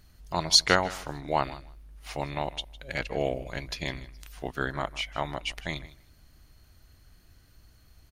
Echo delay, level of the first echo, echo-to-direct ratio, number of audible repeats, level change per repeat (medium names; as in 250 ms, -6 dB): 156 ms, -18.0 dB, -18.0 dB, 2, -16.5 dB